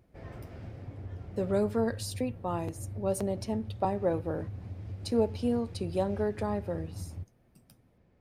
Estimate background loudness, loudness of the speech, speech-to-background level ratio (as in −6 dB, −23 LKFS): −42.5 LKFS, −32.5 LKFS, 10.0 dB